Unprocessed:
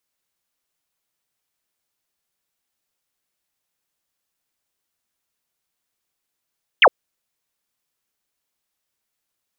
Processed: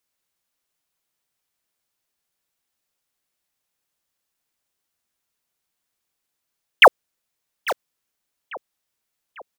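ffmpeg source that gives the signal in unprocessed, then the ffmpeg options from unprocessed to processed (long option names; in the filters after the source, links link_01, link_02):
-f lavfi -i "aevalsrc='0.447*clip(t/0.002,0,1)*clip((0.06-t)/0.002,0,1)*sin(2*PI*3400*0.06/log(420/3400)*(exp(log(420/3400)*t/0.06)-1))':duration=0.06:sample_rate=44100"
-filter_complex "[0:a]asplit=2[link_01][link_02];[link_02]adelay=846,lowpass=frequency=2900:poles=1,volume=-14dB,asplit=2[link_03][link_04];[link_04]adelay=846,lowpass=frequency=2900:poles=1,volume=0.49,asplit=2[link_05][link_06];[link_06]adelay=846,lowpass=frequency=2900:poles=1,volume=0.49,asplit=2[link_07][link_08];[link_08]adelay=846,lowpass=frequency=2900:poles=1,volume=0.49,asplit=2[link_09][link_10];[link_10]adelay=846,lowpass=frequency=2900:poles=1,volume=0.49[link_11];[link_01][link_03][link_05][link_07][link_09][link_11]amix=inputs=6:normalize=0,asplit=2[link_12][link_13];[link_13]acrusher=bits=3:mix=0:aa=0.000001,volume=-7.5dB[link_14];[link_12][link_14]amix=inputs=2:normalize=0"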